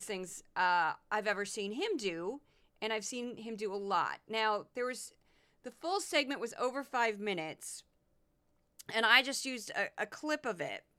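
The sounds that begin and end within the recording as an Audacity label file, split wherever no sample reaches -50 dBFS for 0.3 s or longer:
2.820000	5.090000	sound
5.640000	7.800000	sound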